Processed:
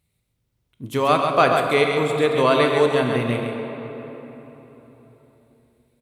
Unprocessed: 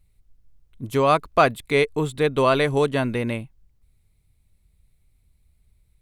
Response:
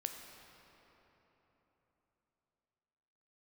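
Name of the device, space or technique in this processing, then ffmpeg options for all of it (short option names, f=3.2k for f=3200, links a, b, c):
PA in a hall: -filter_complex "[0:a]highpass=120,equalizer=f=3.3k:t=o:w=0.43:g=3,aecho=1:1:135:0.501[a];[1:a]atrim=start_sample=2205[b];[a][b]afir=irnorm=-1:irlink=0,volume=2dB"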